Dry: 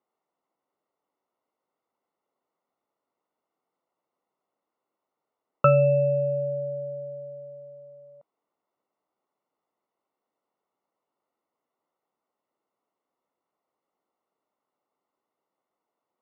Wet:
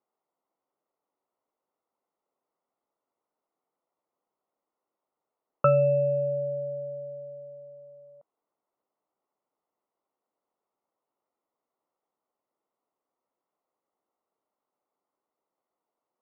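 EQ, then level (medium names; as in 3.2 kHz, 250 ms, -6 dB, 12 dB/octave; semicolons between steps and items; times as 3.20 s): distance through air 210 m; bass shelf 360 Hz -6.5 dB; treble shelf 2 kHz -10.5 dB; +1.5 dB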